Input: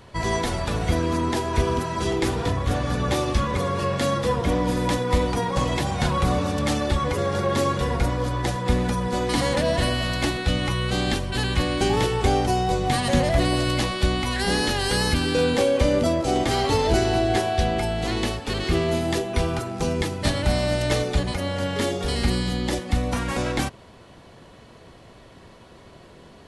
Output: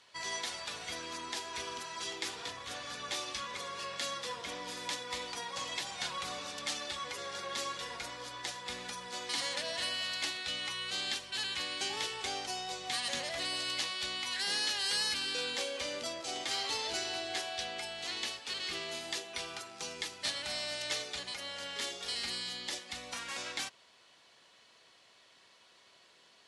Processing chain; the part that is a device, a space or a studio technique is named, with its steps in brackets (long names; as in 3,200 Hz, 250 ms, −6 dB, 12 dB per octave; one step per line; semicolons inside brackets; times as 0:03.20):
piezo pickup straight into a mixer (low-pass filter 5,200 Hz 12 dB per octave; first difference)
level +2 dB